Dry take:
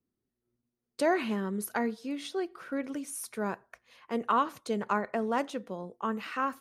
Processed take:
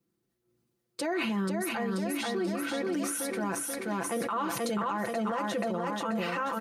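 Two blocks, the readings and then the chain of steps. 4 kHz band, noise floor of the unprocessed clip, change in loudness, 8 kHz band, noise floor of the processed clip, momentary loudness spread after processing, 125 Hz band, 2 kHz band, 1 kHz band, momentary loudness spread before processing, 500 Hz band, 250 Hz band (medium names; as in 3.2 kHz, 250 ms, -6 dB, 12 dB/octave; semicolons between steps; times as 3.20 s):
+5.5 dB, under -85 dBFS, +1.0 dB, +7.0 dB, -80 dBFS, 2 LU, +5.0 dB, +2.0 dB, -1.0 dB, 9 LU, +0.5 dB, +2.0 dB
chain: in parallel at -2 dB: compressor with a negative ratio -32 dBFS; on the sum: high-pass 51 Hz; comb 5.9 ms, depth 80%; on a send: feedback delay 483 ms, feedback 48%, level -4 dB; on the sum: peak limiter -21.5 dBFS, peak gain reduction 11 dB; decay stretcher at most 26 dB/s; trim -2 dB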